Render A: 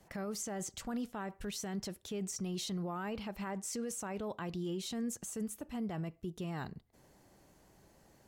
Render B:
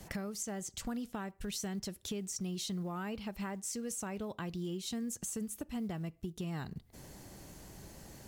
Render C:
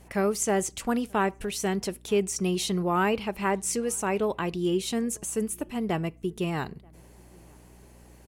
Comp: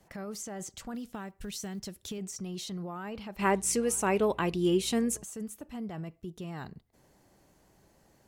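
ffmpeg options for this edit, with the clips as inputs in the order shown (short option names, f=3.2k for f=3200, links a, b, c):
-filter_complex "[0:a]asplit=3[a][b][c];[a]atrim=end=0.952[d];[1:a]atrim=start=0.948:end=2.182[e];[b]atrim=start=2.178:end=3.392[f];[2:a]atrim=start=3.388:end=5.222[g];[c]atrim=start=5.218[h];[d][e]acrossfade=d=0.004:c1=hsin:c2=hsin[i];[i][f]acrossfade=d=0.004:c1=hsin:c2=hsin[j];[j][g]acrossfade=d=0.004:c1=hsin:c2=hsin[k];[k][h]acrossfade=d=0.004:c1=hsin:c2=hsin"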